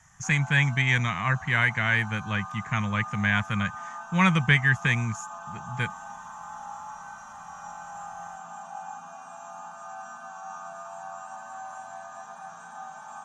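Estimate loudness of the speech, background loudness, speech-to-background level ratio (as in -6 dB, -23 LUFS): -25.0 LUFS, -40.5 LUFS, 15.5 dB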